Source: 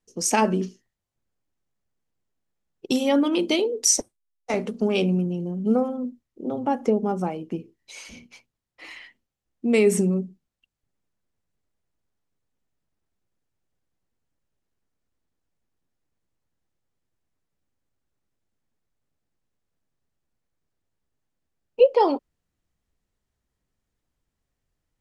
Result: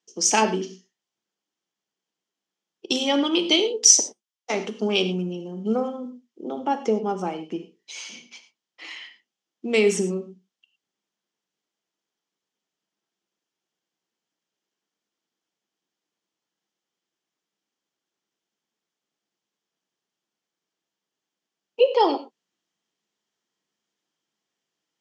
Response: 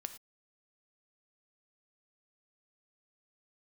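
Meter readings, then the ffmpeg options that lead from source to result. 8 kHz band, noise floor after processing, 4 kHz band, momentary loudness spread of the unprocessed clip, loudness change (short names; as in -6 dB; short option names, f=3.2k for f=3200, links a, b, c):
+5.5 dB, under -85 dBFS, +7.5 dB, 16 LU, +1.0 dB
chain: -filter_complex "[0:a]highpass=f=210:w=0.5412,highpass=f=210:w=1.3066,equalizer=f=250:t=q:w=4:g=-6,equalizer=f=560:t=q:w=4:g=-5,equalizer=f=3.2k:t=q:w=4:g=9,lowpass=f=7.4k:w=0.5412,lowpass=f=7.4k:w=1.3066[a];[1:a]atrim=start_sample=2205,asetrate=43218,aresample=44100[b];[a][b]afir=irnorm=-1:irlink=0,aexciter=amount=2:drive=3.3:freq=5k,volume=4dB"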